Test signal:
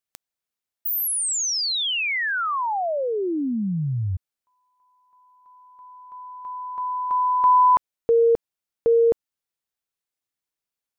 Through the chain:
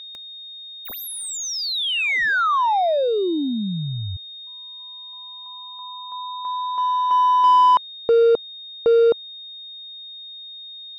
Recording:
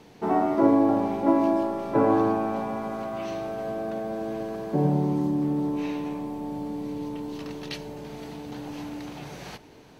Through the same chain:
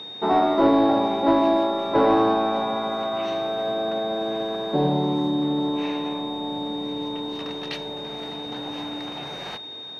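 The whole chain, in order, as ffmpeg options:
ffmpeg -i in.wav -filter_complex "[0:a]aeval=exprs='val(0)+0.0141*sin(2*PI*3700*n/s)':channel_layout=same,asplit=2[link_01][link_02];[link_02]highpass=frequency=720:poles=1,volume=15dB,asoftclip=type=tanh:threshold=-7dB[link_03];[link_01][link_03]amix=inputs=2:normalize=0,lowpass=frequency=1500:poles=1,volume=-6dB" out.wav

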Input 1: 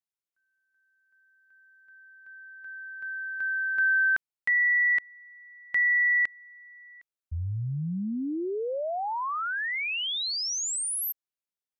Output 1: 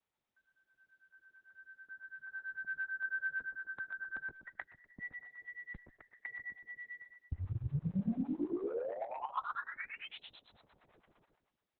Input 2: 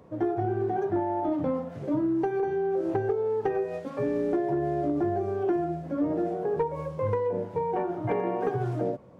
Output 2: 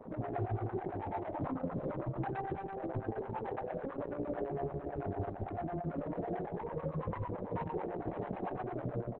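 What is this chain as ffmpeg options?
ffmpeg -i in.wav -filter_complex "[0:a]acrossover=split=130|390[link_01][link_02][link_03];[link_01]acompressor=threshold=-38dB:ratio=4[link_04];[link_02]acompressor=threshold=-38dB:ratio=8[link_05];[link_03]acompressor=threshold=-33dB:ratio=3[link_06];[link_04][link_05][link_06]amix=inputs=3:normalize=0,asplit=2[link_07][link_08];[link_08]aecho=0:1:123|246|369|492:0.335|0.111|0.0365|0.012[link_09];[link_07][link_09]amix=inputs=2:normalize=0,afftfilt=real='re*lt(hypot(re,im),0.224)':imag='im*lt(hypot(re,im),0.224)':win_size=1024:overlap=0.75,acompressor=threshold=-41dB:ratio=3:attack=1.5:release=45:knee=1:detection=rms,acrusher=bits=5:mode=log:mix=0:aa=0.000001,lowpass=1100,asoftclip=type=tanh:threshold=-39.5dB,asplit=2[link_10][link_11];[link_11]aecho=0:1:140:0.376[link_12];[link_10][link_12]amix=inputs=2:normalize=0,acrossover=split=570[link_13][link_14];[link_13]aeval=exprs='val(0)*(1-1/2+1/2*cos(2*PI*9*n/s))':channel_layout=same[link_15];[link_14]aeval=exprs='val(0)*(1-1/2-1/2*cos(2*PI*9*n/s))':channel_layout=same[link_16];[link_15][link_16]amix=inputs=2:normalize=0,volume=13.5dB" -ar 48000 -c:a libopus -b:a 6k out.opus

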